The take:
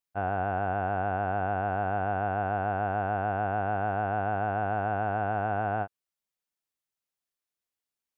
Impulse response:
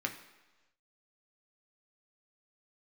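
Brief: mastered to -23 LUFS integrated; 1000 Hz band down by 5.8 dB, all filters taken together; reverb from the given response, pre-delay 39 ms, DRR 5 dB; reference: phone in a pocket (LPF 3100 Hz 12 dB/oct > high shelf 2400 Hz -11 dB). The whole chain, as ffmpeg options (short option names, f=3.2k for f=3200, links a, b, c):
-filter_complex "[0:a]equalizer=f=1k:t=o:g=-8,asplit=2[a][b];[1:a]atrim=start_sample=2205,adelay=39[c];[b][c]afir=irnorm=-1:irlink=0,volume=-8.5dB[d];[a][d]amix=inputs=2:normalize=0,lowpass=3.1k,highshelf=f=2.4k:g=-11,volume=10dB"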